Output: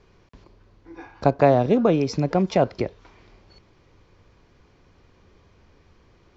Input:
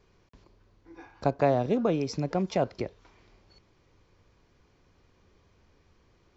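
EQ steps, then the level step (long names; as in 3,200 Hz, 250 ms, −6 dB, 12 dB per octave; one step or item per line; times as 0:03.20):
high-frequency loss of the air 57 metres
+7.5 dB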